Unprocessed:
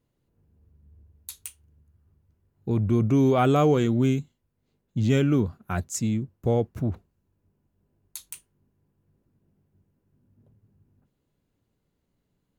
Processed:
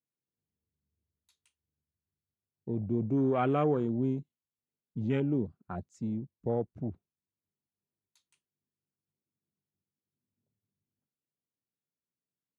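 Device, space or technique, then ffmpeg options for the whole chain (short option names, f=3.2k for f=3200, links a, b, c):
over-cleaned archive recording: -af "highpass=130,lowpass=5.3k,afwtdn=0.0251,volume=-7dB"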